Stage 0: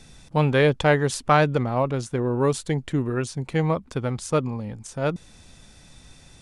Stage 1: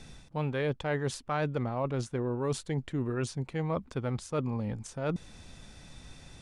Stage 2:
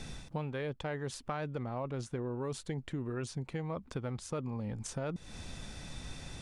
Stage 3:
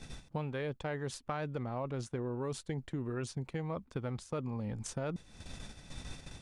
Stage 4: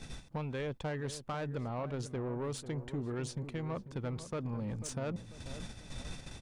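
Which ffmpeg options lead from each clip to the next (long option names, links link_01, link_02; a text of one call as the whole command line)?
ffmpeg -i in.wav -af "areverse,acompressor=threshold=-29dB:ratio=5,areverse,highshelf=frequency=6300:gain=-7.5" out.wav
ffmpeg -i in.wav -af "acompressor=threshold=-39dB:ratio=10,volume=5dB" out.wav
ffmpeg -i in.wav -af "agate=range=-9dB:threshold=-43dB:ratio=16:detection=peak" out.wav
ffmpeg -i in.wav -filter_complex "[0:a]asoftclip=type=tanh:threshold=-33dB,asplit=2[link_01][link_02];[link_02]adelay=493,lowpass=frequency=1200:poles=1,volume=-11.5dB,asplit=2[link_03][link_04];[link_04]adelay=493,lowpass=frequency=1200:poles=1,volume=0.49,asplit=2[link_05][link_06];[link_06]adelay=493,lowpass=frequency=1200:poles=1,volume=0.49,asplit=2[link_07][link_08];[link_08]adelay=493,lowpass=frequency=1200:poles=1,volume=0.49,asplit=2[link_09][link_10];[link_10]adelay=493,lowpass=frequency=1200:poles=1,volume=0.49[link_11];[link_01][link_03][link_05][link_07][link_09][link_11]amix=inputs=6:normalize=0,volume=2dB" out.wav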